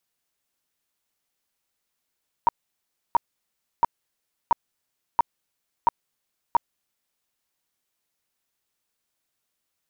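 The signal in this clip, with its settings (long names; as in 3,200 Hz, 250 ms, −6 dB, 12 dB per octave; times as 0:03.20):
tone bursts 940 Hz, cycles 16, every 0.68 s, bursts 7, −13 dBFS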